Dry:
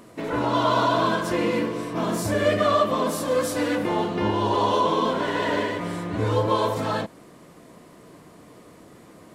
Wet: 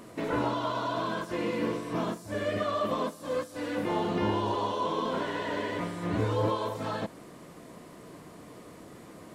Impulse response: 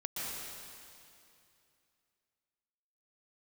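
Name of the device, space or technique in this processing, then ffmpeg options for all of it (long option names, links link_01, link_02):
de-esser from a sidechain: -filter_complex "[0:a]asplit=2[link_01][link_02];[link_02]highpass=7000,apad=whole_len=411895[link_03];[link_01][link_03]sidechaincompress=threshold=-54dB:ratio=6:attack=0.65:release=30"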